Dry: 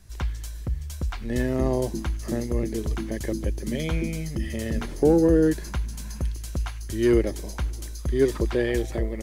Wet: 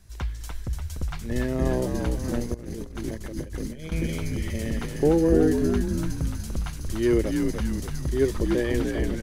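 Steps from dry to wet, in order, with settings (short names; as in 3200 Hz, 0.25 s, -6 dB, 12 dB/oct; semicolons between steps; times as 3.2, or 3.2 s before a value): frequency-shifting echo 0.293 s, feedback 56%, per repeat -70 Hz, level -4 dB; 2.54–3.92 negative-ratio compressor -30 dBFS, ratio -0.5; gain -2 dB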